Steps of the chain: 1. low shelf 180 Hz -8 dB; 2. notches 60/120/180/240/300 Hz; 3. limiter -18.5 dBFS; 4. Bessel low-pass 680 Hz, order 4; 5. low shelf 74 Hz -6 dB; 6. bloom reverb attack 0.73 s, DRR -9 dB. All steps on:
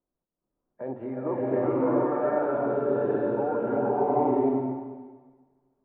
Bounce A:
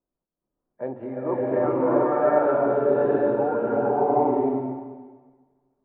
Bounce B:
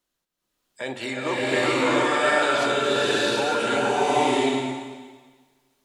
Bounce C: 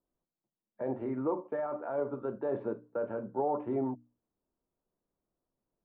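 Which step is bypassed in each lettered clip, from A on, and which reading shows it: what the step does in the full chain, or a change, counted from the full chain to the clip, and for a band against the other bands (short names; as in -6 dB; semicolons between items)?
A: 3, mean gain reduction 2.0 dB; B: 4, 2 kHz band +18.5 dB; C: 6, momentary loudness spread change -8 LU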